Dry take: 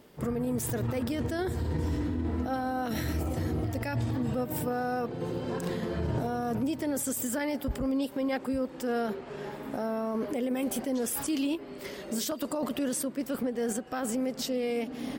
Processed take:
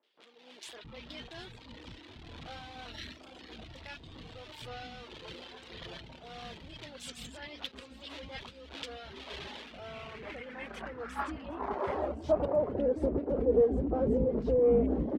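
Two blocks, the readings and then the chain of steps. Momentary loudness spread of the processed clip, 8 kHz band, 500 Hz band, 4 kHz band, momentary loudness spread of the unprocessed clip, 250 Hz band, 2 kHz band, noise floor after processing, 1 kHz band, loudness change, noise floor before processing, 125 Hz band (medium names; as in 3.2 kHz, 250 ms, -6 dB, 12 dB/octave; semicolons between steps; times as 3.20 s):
20 LU, -19.0 dB, +1.5 dB, -2.0 dB, 3 LU, -7.0 dB, -5.5 dB, -54 dBFS, -5.5 dB, -1.0 dB, -44 dBFS, -8.5 dB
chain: octave divider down 2 oct, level 0 dB; de-hum 138 Hz, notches 27; in parallel at -3.5 dB: Schmitt trigger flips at -42.5 dBFS; on the sum: peak limiter -27 dBFS, peak gain reduction 9.5 dB; reverb removal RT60 1.3 s; RIAA curve playback; tremolo 1.7 Hz, depth 34%; band-pass sweep 3.5 kHz -> 430 Hz, 9.52–13.12 s; three bands offset in time mids, highs, lows 30/670 ms, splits 280/1500 Hz; level rider gain up to 13 dB; on a send: delay 758 ms -19.5 dB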